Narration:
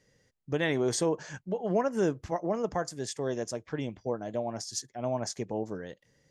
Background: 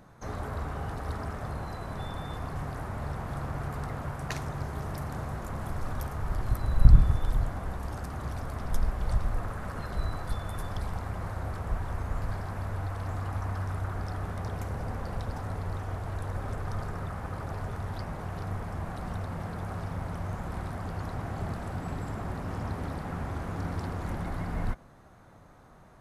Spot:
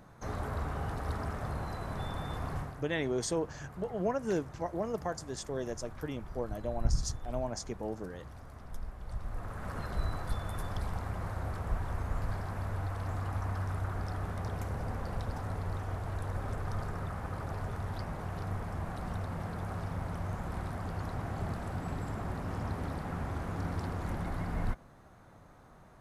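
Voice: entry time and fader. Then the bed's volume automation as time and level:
2.30 s, -4.5 dB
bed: 2.57 s -1 dB
2.84 s -13.5 dB
9.05 s -13.5 dB
9.72 s -2 dB

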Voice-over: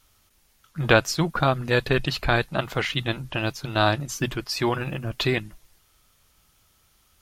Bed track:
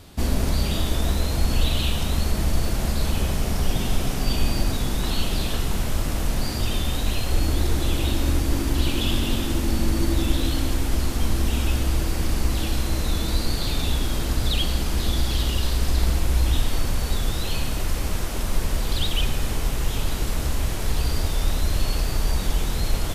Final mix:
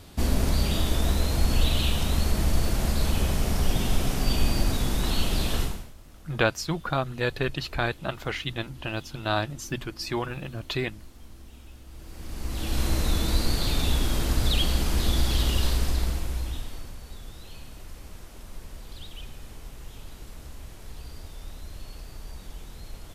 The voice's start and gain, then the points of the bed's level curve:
5.50 s, -5.5 dB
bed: 5.63 s -1.5 dB
5.94 s -25 dB
11.85 s -25 dB
12.83 s -1 dB
15.68 s -1 dB
17.00 s -18 dB

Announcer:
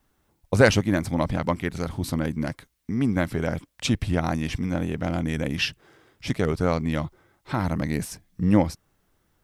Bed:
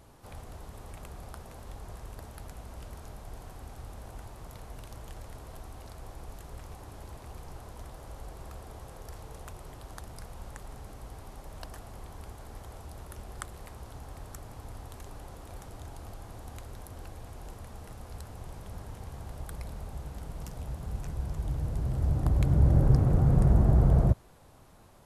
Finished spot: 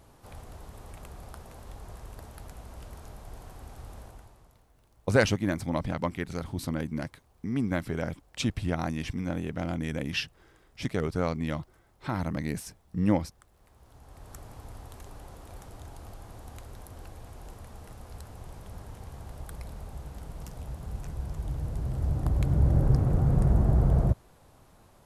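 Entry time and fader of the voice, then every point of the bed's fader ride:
4.55 s, -5.5 dB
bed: 4.00 s -0.5 dB
4.72 s -20 dB
13.45 s -20 dB
14.37 s -1 dB

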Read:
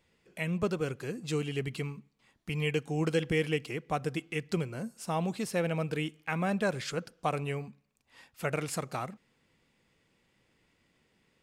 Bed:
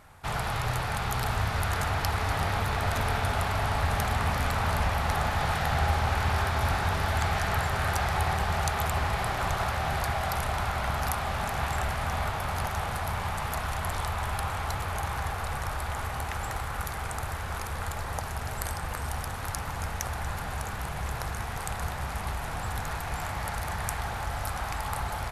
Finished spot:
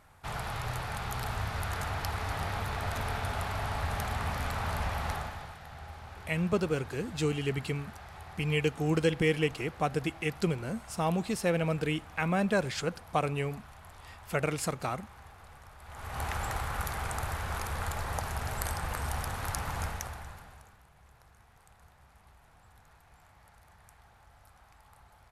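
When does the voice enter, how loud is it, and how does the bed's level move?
5.90 s, +2.0 dB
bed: 5.10 s -6 dB
5.57 s -20 dB
15.78 s -20 dB
16.23 s -1 dB
19.83 s -1 dB
20.85 s -26.5 dB

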